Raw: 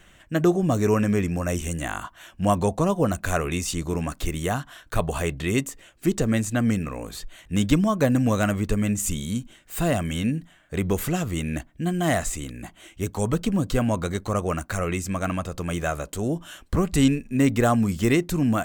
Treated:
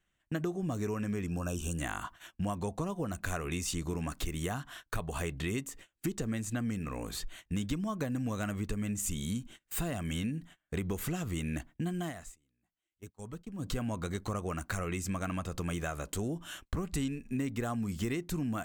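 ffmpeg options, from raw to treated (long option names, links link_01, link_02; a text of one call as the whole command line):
ffmpeg -i in.wav -filter_complex "[0:a]asettb=1/sr,asplit=3[link_01][link_02][link_03];[link_01]atrim=end=1.264[link_04];[link_02]atrim=start=1.26:end=1.78,asetpts=PTS-STARTPTS,afade=type=in:duration=0.004:curve=qsin,afade=type=out:start_time=0.516:duration=0.004:curve=qsin,asuperstop=centerf=2000:order=8:qfactor=2.5[link_05];[link_03]atrim=start=1.776[link_06];[link_04][link_05]acrossfade=duration=0.004:curve1=hsin:curve2=qsin[link_07];[link_07][link_06]acrossfade=duration=0.004:curve1=qsin:curve2=hsin,asplit=3[link_08][link_09][link_10];[link_08]atrim=end=12.13,asetpts=PTS-STARTPTS,afade=type=out:start_time=11.88:duration=0.25:curve=qsin:silence=0.133352[link_11];[link_09]atrim=start=12.13:end=13.58,asetpts=PTS-STARTPTS,volume=-17.5dB[link_12];[link_10]atrim=start=13.58,asetpts=PTS-STARTPTS,afade=type=in:duration=0.25:curve=qsin:silence=0.133352[link_13];[link_11][link_12][link_13]concat=n=3:v=0:a=1,agate=range=-24dB:threshold=-44dB:ratio=16:detection=peak,acompressor=threshold=-29dB:ratio=6,equalizer=frequency=580:width_type=o:width=0.55:gain=-4,volume=-2dB" out.wav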